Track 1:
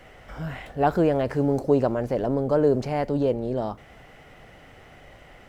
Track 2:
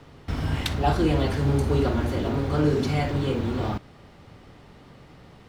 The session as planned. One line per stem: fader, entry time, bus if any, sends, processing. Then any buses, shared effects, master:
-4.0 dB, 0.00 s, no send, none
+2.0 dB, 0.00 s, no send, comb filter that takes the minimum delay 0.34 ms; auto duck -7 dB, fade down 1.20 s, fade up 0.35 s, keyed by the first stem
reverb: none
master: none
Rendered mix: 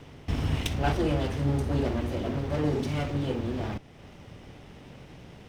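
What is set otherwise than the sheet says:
stem 1 -4.0 dB -> -13.5 dB; master: extra treble shelf 9.8 kHz -3.5 dB

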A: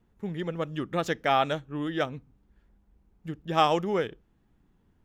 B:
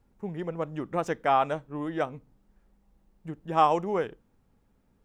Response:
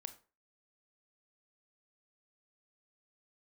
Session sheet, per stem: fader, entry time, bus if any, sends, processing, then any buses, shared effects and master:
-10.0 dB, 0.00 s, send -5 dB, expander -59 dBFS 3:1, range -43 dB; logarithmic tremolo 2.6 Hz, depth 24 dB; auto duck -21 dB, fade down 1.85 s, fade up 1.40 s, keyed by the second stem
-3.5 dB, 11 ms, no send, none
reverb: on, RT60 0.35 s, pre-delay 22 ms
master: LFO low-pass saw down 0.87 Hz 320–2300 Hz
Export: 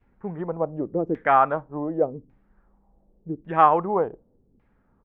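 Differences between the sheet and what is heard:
stem A: missing expander -59 dBFS 3:1, range -43 dB; stem B -3.5 dB -> +2.5 dB

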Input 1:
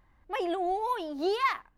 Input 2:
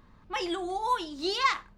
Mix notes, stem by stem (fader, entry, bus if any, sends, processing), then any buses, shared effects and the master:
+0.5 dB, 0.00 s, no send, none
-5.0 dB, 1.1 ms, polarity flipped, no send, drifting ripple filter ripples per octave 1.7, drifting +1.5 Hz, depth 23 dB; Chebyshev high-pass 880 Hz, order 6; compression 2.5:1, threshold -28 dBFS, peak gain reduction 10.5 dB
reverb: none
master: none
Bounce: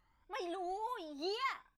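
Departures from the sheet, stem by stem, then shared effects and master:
stem 1 +0.5 dB -> -11.0 dB; stem 2 -5.0 dB -> -17.0 dB

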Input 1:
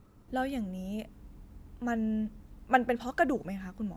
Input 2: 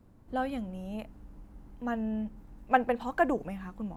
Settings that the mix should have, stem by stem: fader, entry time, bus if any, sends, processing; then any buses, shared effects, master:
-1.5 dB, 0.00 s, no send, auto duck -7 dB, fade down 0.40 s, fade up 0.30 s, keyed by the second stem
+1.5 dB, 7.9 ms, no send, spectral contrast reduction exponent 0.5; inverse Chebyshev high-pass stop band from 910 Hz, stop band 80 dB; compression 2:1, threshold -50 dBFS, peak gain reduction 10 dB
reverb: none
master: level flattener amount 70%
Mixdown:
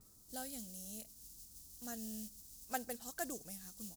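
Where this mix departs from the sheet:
stem 1 -1.5 dB -> -9.5 dB; master: missing level flattener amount 70%

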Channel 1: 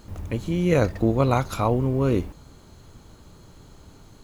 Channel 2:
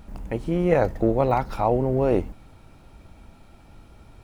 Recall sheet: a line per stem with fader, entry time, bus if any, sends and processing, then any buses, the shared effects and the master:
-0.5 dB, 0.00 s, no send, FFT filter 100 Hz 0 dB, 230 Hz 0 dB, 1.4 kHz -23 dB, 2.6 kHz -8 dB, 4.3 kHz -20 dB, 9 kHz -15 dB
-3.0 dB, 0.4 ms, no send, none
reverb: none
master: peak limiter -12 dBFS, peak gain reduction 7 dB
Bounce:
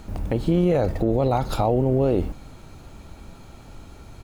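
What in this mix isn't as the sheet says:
stem 1: missing FFT filter 100 Hz 0 dB, 230 Hz 0 dB, 1.4 kHz -23 dB, 2.6 kHz -8 dB, 4.3 kHz -20 dB, 9 kHz -15 dB; stem 2 -3.0 dB -> +4.5 dB

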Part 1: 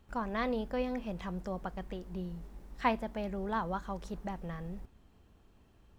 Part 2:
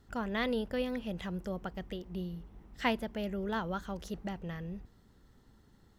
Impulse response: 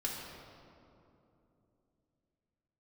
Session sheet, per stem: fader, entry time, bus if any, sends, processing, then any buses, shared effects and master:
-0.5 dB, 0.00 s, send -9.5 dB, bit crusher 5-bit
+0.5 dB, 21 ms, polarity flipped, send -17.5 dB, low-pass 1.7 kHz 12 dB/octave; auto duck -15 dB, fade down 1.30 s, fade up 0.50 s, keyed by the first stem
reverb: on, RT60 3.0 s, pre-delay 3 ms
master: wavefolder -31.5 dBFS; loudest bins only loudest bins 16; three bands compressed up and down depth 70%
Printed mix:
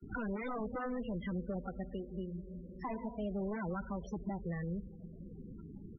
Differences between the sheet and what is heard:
stem 1 -0.5 dB -> -11.5 dB; stem 2: missing low-pass 1.7 kHz 12 dB/octave

